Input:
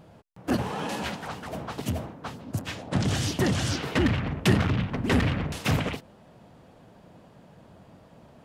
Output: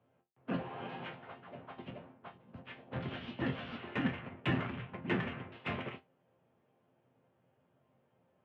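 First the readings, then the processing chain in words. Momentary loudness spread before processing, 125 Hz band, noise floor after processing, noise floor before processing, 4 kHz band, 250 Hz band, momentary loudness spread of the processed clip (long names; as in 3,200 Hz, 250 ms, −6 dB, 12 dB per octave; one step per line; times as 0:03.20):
12 LU, −15.0 dB, −74 dBFS, −54 dBFS, −14.5 dB, −11.5 dB, 15 LU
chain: single-sideband voice off tune −55 Hz 190–3,200 Hz
in parallel at −10.5 dB: soft clipping −25.5 dBFS, distortion −10 dB
on the sum: resonators tuned to a chord F2 sus4, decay 0.22 s
expander for the loud parts 1.5 to 1, over −56 dBFS
level +2 dB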